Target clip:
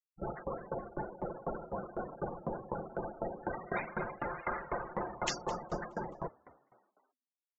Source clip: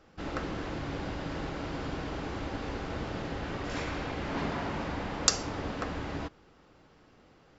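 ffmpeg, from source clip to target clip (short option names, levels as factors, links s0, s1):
-filter_complex "[0:a]afftfilt=real='re*gte(hypot(re,im),0.0282)':imag='im*gte(hypot(re,im),0.0282)':win_size=1024:overlap=0.75,lowpass=4700,afftfilt=real='re*lt(hypot(re,im),0.0562)':imag='im*lt(hypot(re,im),0.0562)':win_size=1024:overlap=0.75,aecho=1:1:5.7:0.46,asplit=2[s0][s1];[s1]asplit=4[s2][s3][s4][s5];[s2]adelay=211,afreqshift=61,volume=0.1[s6];[s3]adelay=422,afreqshift=122,volume=0.0562[s7];[s4]adelay=633,afreqshift=183,volume=0.0313[s8];[s5]adelay=844,afreqshift=244,volume=0.0176[s9];[s6][s7][s8][s9]amix=inputs=4:normalize=0[s10];[s0][s10]amix=inputs=2:normalize=0,aeval=exprs='val(0)*pow(10,-22*if(lt(mod(4*n/s,1),2*abs(4)/1000),1-mod(4*n/s,1)/(2*abs(4)/1000),(mod(4*n/s,1)-2*abs(4)/1000)/(1-2*abs(4)/1000))/20)':c=same,volume=3.35"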